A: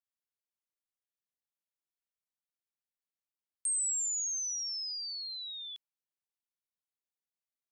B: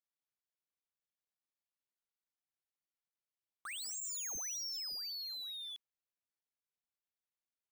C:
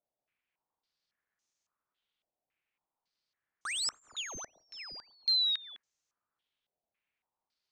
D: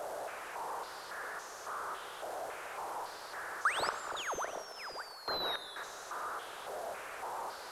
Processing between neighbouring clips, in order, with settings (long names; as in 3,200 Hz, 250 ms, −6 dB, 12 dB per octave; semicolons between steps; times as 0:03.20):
running median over 5 samples; level −1.5 dB
low-pass on a step sequencer 3.6 Hz 660–6,400 Hz; level +7 dB
linear delta modulator 64 kbit/s, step −42 dBFS; flat-topped bell 780 Hz +16 dB 2.5 octaves; four-comb reverb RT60 2.2 s, combs from 31 ms, DRR 10.5 dB; level −4.5 dB